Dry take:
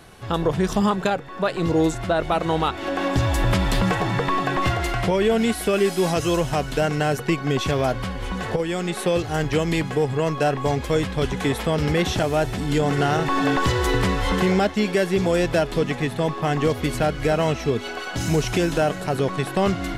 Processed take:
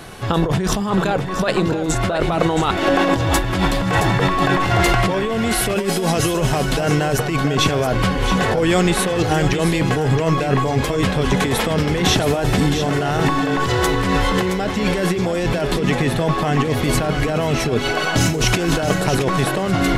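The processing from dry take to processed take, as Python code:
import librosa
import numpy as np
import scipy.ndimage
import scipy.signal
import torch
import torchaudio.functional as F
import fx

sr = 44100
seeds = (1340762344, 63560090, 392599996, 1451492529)

y = fx.peak_eq(x, sr, hz=63.0, db=-14.5, octaves=0.26)
y = fx.over_compress(y, sr, threshold_db=-25.0, ratio=-1.0)
y = y + 10.0 ** (-9.0 / 20.0) * np.pad(y, (int(670 * sr / 1000.0), 0))[:len(y)]
y = y * librosa.db_to_amplitude(7.0)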